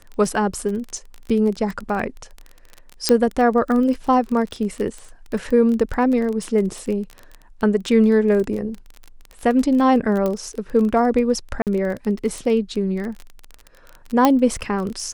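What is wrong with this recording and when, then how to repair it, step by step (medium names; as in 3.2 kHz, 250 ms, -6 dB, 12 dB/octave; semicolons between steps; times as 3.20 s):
crackle 21 per s -25 dBFS
3.09 s: pop -2 dBFS
10.26 s: pop -11 dBFS
11.62–11.67 s: dropout 48 ms
14.25 s: pop -2 dBFS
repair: de-click; interpolate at 11.62 s, 48 ms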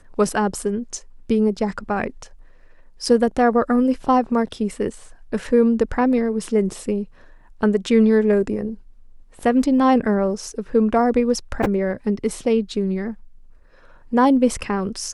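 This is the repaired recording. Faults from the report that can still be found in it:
3.09 s: pop
10.26 s: pop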